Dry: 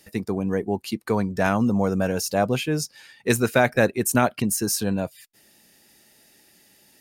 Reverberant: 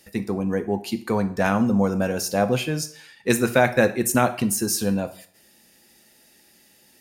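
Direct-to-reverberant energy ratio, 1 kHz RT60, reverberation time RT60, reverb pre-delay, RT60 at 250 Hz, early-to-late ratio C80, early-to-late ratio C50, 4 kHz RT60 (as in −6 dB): 8.5 dB, 0.55 s, 0.55 s, 3 ms, 0.45 s, 18.0 dB, 14.0 dB, 0.45 s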